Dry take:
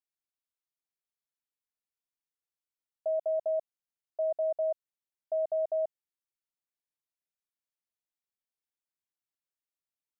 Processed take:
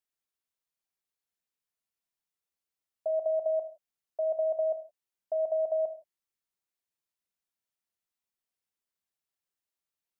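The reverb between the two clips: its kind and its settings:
reverb whose tail is shaped and stops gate 190 ms falling, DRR 7 dB
level +1.5 dB

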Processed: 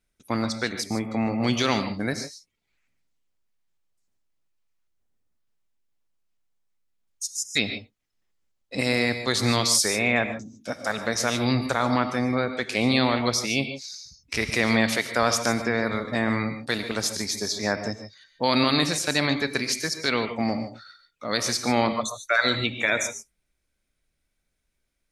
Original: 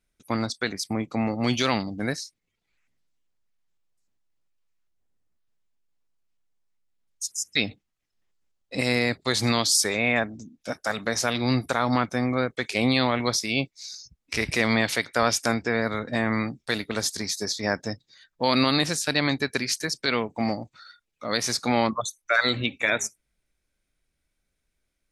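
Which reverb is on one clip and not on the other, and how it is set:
reverb whose tail is shaped and stops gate 170 ms rising, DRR 8.5 dB

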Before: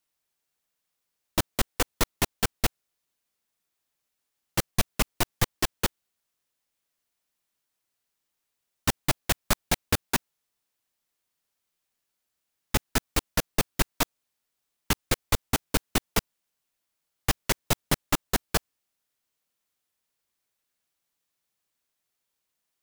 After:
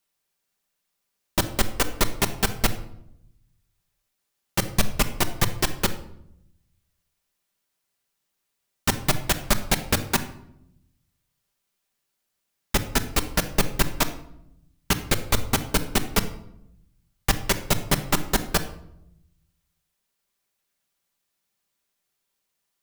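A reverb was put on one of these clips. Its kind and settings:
rectangular room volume 2,000 cubic metres, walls furnished, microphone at 1.2 metres
level +2.5 dB

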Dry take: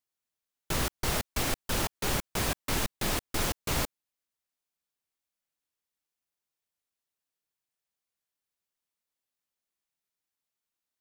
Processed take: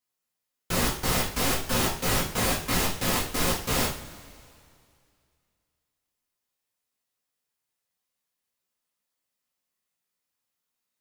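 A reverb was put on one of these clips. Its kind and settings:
coupled-rooms reverb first 0.39 s, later 2.4 s, from −20 dB, DRR −5 dB
level −1 dB

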